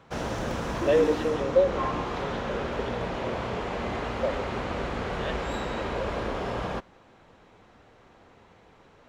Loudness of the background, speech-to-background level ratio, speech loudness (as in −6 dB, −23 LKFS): −31.5 LKFS, 2.0 dB, −29.5 LKFS